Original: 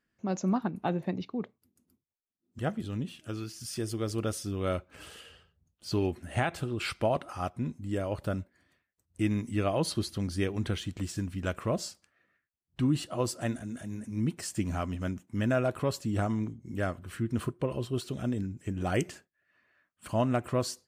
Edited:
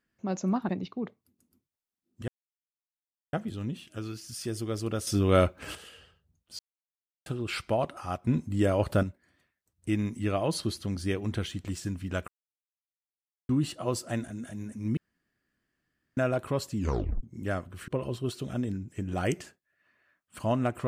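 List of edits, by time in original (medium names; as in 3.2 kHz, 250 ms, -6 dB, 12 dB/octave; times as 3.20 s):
0.69–1.06 s: delete
2.65 s: insert silence 1.05 s
4.39–5.07 s: gain +9 dB
5.91–6.58 s: mute
7.59–8.35 s: gain +7 dB
11.60–12.81 s: mute
14.29–15.49 s: room tone
16.09 s: tape stop 0.46 s
17.20–17.57 s: delete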